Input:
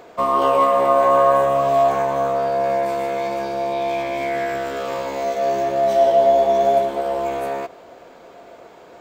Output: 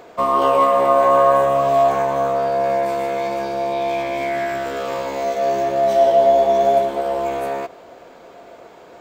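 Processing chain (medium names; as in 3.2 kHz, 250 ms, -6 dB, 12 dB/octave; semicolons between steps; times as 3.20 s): 4.24–4.66 s: hum notches 60/120/180/240/300/360/420/480 Hz; trim +1 dB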